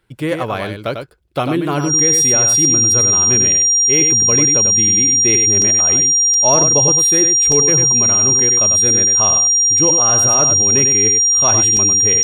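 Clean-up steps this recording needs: band-stop 5.7 kHz, Q 30; interpolate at 5.62/6.34/7.52/11.77 s, 2 ms; inverse comb 97 ms -6.5 dB

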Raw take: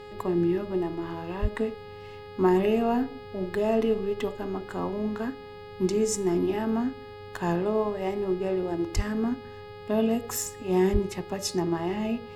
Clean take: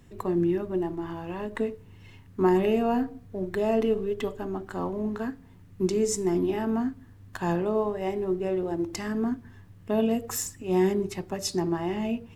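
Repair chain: de-hum 416.5 Hz, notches 12; band-stop 520 Hz, Q 30; de-plosive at 1.41/8.95/10.92 s

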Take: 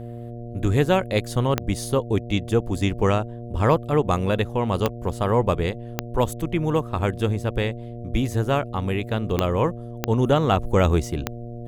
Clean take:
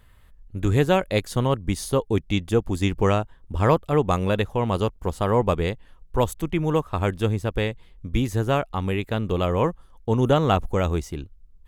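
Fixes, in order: de-click; de-hum 118.4 Hz, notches 6; trim 0 dB, from 10.66 s -4.5 dB

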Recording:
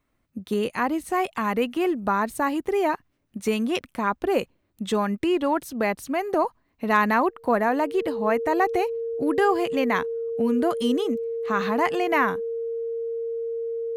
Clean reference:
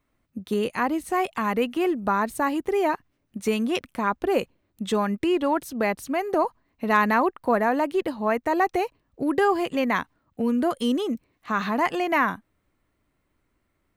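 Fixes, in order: band-stop 460 Hz, Q 30

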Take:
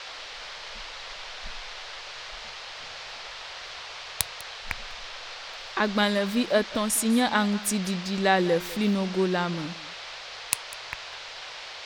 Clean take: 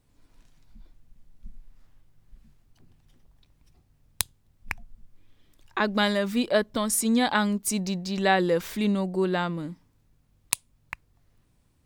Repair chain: noise print and reduce 24 dB; inverse comb 199 ms -18.5 dB

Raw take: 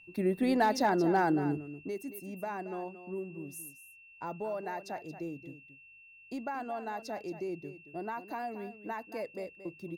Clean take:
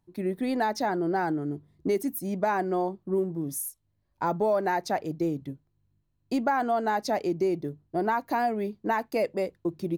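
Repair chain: clip repair -19 dBFS; band-stop 2.7 kHz, Q 30; inverse comb 227 ms -12.5 dB; gain correction +12 dB, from 1.68 s

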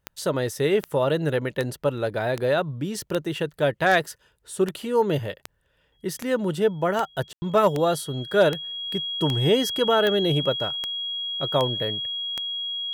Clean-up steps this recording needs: clip repair -9.5 dBFS; de-click; band-stop 3.3 kHz, Q 30; room tone fill 7.33–7.42 s

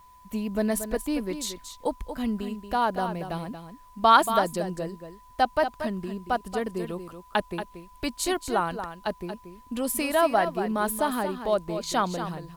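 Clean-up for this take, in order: band-stop 1 kHz, Q 30; expander -43 dBFS, range -21 dB; inverse comb 231 ms -9.5 dB

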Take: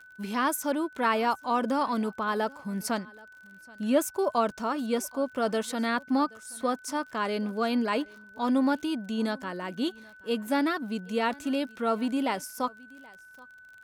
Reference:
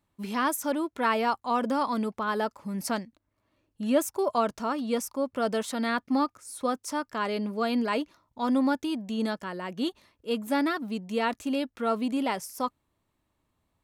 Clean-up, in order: de-click; band-stop 1.5 kHz, Q 30; inverse comb 777 ms -24 dB

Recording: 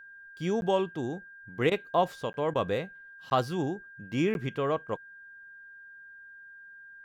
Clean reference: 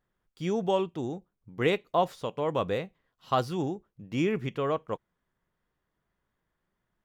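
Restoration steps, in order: band-stop 1.6 kHz, Q 30; interpolate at 0.61/2.33/3.30/4.34 s, 11 ms; interpolate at 1.70/2.54 s, 13 ms

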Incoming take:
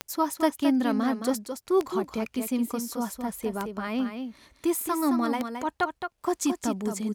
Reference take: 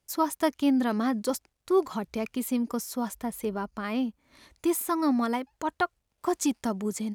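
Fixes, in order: de-click; inverse comb 218 ms -7 dB

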